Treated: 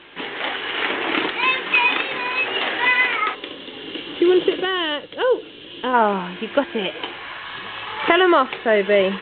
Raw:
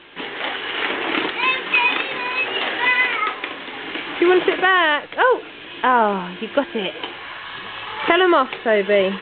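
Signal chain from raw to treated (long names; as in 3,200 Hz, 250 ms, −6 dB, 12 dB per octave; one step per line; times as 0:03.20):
harmonic generator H 2 −43 dB, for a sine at −1.5 dBFS
gain on a spectral selection 0:03.35–0:05.94, 600–2,700 Hz −10 dB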